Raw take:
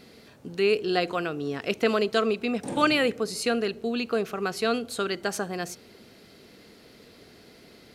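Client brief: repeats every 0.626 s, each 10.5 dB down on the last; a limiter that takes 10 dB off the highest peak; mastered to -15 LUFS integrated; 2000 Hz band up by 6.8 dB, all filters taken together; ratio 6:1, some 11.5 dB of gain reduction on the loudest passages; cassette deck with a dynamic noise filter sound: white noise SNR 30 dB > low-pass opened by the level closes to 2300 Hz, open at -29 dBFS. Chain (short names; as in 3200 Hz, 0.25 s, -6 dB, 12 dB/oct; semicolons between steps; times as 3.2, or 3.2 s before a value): bell 2000 Hz +9 dB; compressor 6:1, threshold -26 dBFS; limiter -23.5 dBFS; feedback echo 0.626 s, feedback 30%, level -10.5 dB; white noise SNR 30 dB; low-pass opened by the level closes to 2300 Hz, open at -29 dBFS; gain +19 dB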